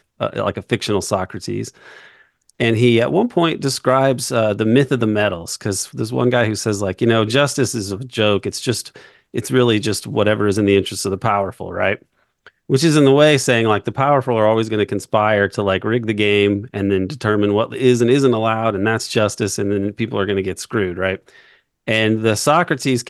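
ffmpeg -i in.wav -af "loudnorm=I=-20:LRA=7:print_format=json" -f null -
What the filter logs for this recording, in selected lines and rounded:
"input_i" : "-17.5",
"input_tp" : "-1.6",
"input_lra" : "3.0",
"input_thresh" : "-27.9",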